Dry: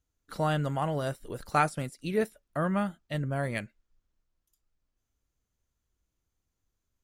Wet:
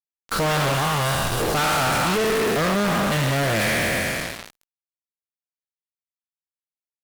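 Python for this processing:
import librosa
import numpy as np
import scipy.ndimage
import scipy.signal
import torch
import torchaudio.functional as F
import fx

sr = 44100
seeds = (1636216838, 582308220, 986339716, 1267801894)

y = fx.spec_trails(x, sr, decay_s=2.38)
y = fx.peak_eq(y, sr, hz=400.0, db=-14.0, octaves=2.1, at=(0.74, 1.4))
y = fx.fuzz(y, sr, gain_db=49.0, gate_db=-44.0)
y = F.gain(torch.from_numpy(y), -6.5).numpy()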